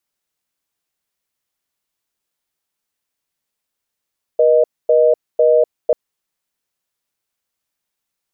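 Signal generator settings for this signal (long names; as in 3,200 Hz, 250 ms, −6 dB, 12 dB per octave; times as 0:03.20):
call progress tone reorder tone, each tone −11.5 dBFS 1.54 s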